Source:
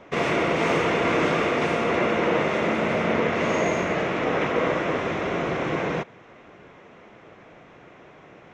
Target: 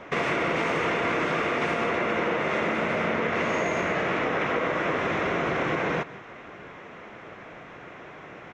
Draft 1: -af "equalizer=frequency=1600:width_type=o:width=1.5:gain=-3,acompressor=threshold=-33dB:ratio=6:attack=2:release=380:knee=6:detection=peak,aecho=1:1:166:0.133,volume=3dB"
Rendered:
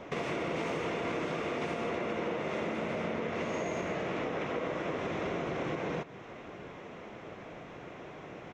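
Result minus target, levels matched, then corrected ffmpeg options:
downward compressor: peak gain reduction +6 dB; 2,000 Hz band −3.5 dB
-af "equalizer=frequency=1600:width_type=o:width=1.5:gain=5,acompressor=threshold=-23.5dB:ratio=6:attack=2:release=380:knee=6:detection=peak,aecho=1:1:166:0.133,volume=3dB"

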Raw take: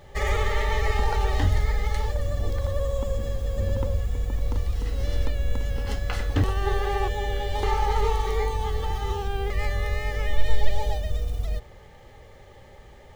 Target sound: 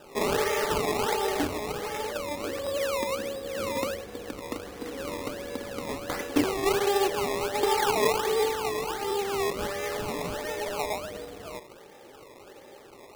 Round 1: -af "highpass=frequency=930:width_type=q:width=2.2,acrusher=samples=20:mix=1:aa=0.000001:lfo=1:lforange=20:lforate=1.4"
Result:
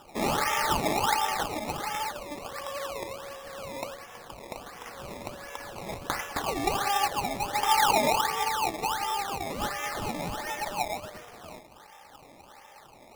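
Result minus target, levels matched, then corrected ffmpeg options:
250 Hz band −4.0 dB
-af "highpass=frequency=310:width_type=q:width=2.2,acrusher=samples=20:mix=1:aa=0.000001:lfo=1:lforange=20:lforate=1.4"

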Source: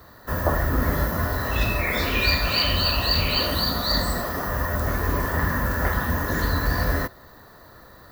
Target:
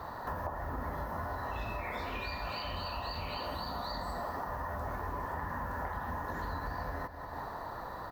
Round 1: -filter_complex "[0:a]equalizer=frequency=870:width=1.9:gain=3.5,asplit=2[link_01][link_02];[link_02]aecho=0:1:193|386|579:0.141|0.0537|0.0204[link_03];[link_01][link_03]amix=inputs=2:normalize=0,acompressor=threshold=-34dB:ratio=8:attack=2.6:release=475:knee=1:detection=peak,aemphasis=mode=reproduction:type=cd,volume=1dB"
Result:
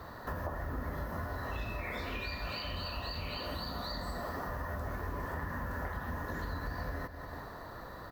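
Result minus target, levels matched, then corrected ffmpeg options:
1,000 Hz band −4.0 dB
-filter_complex "[0:a]equalizer=frequency=870:width=1.9:gain=13.5,asplit=2[link_01][link_02];[link_02]aecho=0:1:193|386|579:0.141|0.0537|0.0204[link_03];[link_01][link_03]amix=inputs=2:normalize=0,acompressor=threshold=-34dB:ratio=8:attack=2.6:release=475:knee=1:detection=peak,aemphasis=mode=reproduction:type=cd,volume=1dB"

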